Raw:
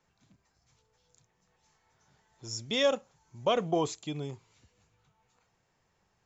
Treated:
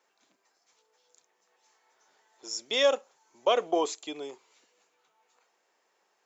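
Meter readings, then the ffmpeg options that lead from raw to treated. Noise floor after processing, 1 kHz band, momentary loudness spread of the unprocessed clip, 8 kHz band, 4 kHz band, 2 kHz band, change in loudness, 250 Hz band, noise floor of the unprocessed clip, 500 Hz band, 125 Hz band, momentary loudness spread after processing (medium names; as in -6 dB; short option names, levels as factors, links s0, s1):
-74 dBFS, +3.0 dB, 14 LU, no reading, +3.0 dB, +3.0 dB, +2.5 dB, -3.0 dB, -75 dBFS, +3.0 dB, under -20 dB, 16 LU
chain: -af "highpass=f=340:w=0.5412,highpass=f=340:w=1.3066,volume=1.41"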